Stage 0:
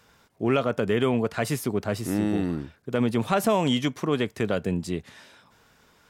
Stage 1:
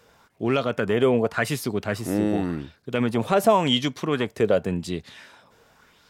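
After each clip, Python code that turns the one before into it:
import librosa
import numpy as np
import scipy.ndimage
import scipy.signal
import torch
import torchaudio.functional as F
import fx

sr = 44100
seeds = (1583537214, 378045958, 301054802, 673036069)

y = fx.bell_lfo(x, sr, hz=0.9, low_hz=460.0, high_hz=4600.0, db=9)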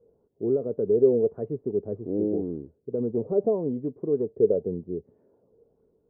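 y = fx.ladder_lowpass(x, sr, hz=480.0, resonance_pct=65)
y = F.gain(torch.from_numpy(y), 2.5).numpy()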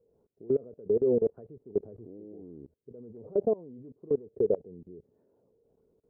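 y = fx.level_steps(x, sr, step_db=23)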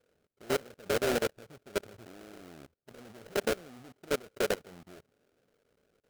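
y = fx.sample_hold(x, sr, seeds[0], rate_hz=1000.0, jitter_pct=20)
y = F.gain(torch.from_numpy(y), -4.0).numpy()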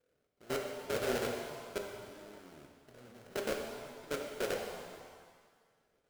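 y = fx.rev_shimmer(x, sr, seeds[1], rt60_s=1.6, semitones=7, shimmer_db=-8, drr_db=1.5)
y = F.gain(torch.from_numpy(y), -7.0).numpy()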